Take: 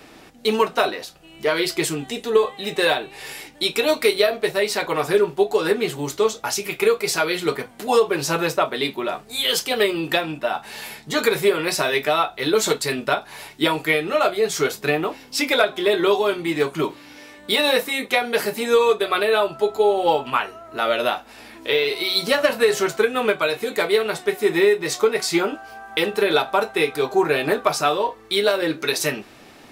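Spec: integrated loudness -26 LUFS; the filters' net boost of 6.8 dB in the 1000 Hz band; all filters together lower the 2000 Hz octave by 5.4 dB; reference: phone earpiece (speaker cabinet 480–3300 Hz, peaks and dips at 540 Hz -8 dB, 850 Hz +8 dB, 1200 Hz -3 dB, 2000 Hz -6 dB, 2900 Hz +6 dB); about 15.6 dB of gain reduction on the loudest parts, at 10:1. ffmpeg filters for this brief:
-af "equalizer=f=1k:t=o:g=7.5,equalizer=f=2k:t=o:g=-8.5,acompressor=threshold=-27dB:ratio=10,highpass=480,equalizer=f=540:t=q:w=4:g=-8,equalizer=f=850:t=q:w=4:g=8,equalizer=f=1.2k:t=q:w=4:g=-3,equalizer=f=2k:t=q:w=4:g=-6,equalizer=f=2.9k:t=q:w=4:g=6,lowpass=f=3.3k:w=0.5412,lowpass=f=3.3k:w=1.3066,volume=8dB"

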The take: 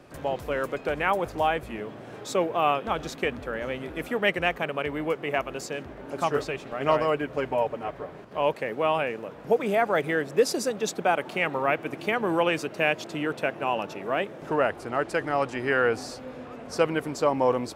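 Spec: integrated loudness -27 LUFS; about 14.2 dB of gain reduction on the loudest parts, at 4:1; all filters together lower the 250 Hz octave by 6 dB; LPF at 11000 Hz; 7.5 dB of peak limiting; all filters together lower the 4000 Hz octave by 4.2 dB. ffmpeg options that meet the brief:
-af "lowpass=11k,equalizer=f=250:t=o:g=-8.5,equalizer=f=4k:t=o:g=-6.5,acompressor=threshold=-36dB:ratio=4,volume=14dB,alimiter=limit=-15dB:level=0:latency=1"

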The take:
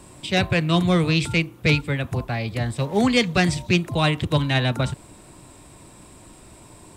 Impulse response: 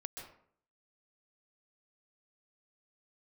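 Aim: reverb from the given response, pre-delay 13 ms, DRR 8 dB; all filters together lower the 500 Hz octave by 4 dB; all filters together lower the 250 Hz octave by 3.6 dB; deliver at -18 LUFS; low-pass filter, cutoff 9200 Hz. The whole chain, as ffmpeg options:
-filter_complex "[0:a]lowpass=9.2k,equalizer=f=250:t=o:g=-5,equalizer=f=500:t=o:g=-3.5,asplit=2[a][b];[1:a]atrim=start_sample=2205,adelay=13[c];[b][c]afir=irnorm=-1:irlink=0,volume=-5.5dB[d];[a][d]amix=inputs=2:normalize=0,volume=4.5dB"

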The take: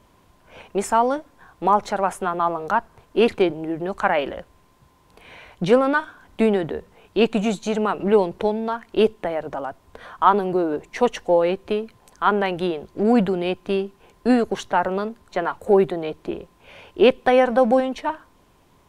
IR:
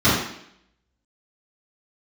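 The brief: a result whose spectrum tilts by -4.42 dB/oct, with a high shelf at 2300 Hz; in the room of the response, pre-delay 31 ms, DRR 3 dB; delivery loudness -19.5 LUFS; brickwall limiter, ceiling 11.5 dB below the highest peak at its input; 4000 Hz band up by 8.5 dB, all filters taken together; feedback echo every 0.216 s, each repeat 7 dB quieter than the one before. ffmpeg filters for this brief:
-filter_complex "[0:a]highshelf=f=2.3k:g=5,equalizer=f=4k:t=o:g=7.5,alimiter=limit=-12.5dB:level=0:latency=1,aecho=1:1:216|432|648|864|1080:0.447|0.201|0.0905|0.0407|0.0183,asplit=2[a][b];[1:a]atrim=start_sample=2205,adelay=31[c];[b][c]afir=irnorm=-1:irlink=0,volume=-25dB[d];[a][d]amix=inputs=2:normalize=0,volume=1dB"

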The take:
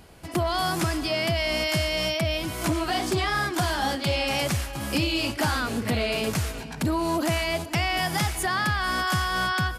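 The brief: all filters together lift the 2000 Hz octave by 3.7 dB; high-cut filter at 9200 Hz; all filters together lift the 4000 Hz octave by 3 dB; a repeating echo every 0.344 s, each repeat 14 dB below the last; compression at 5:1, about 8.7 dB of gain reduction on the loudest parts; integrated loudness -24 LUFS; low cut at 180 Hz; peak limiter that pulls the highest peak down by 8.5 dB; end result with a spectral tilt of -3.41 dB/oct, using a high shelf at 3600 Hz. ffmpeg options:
-af "highpass=180,lowpass=9.2k,equalizer=f=2k:t=o:g=5,highshelf=f=3.6k:g=-7,equalizer=f=4k:t=o:g=7,acompressor=threshold=-30dB:ratio=5,alimiter=level_in=1dB:limit=-24dB:level=0:latency=1,volume=-1dB,aecho=1:1:344|688:0.2|0.0399,volume=9.5dB"

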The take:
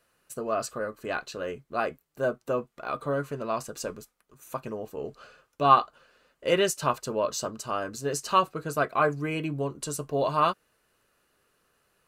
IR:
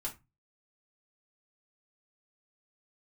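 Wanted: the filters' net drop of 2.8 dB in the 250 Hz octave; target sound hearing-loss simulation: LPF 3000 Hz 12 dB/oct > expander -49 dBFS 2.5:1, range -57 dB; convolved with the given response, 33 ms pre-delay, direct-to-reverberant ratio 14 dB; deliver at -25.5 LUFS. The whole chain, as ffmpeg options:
-filter_complex "[0:a]equalizer=f=250:t=o:g=-4,asplit=2[a][b];[1:a]atrim=start_sample=2205,adelay=33[c];[b][c]afir=irnorm=-1:irlink=0,volume=-14dB[d];[a][d]amix=inputs=2:normalize=0,lowpass=3k,agate=range=-57dB:threshold=-49dB:ratio=2.5,volume=4dB"

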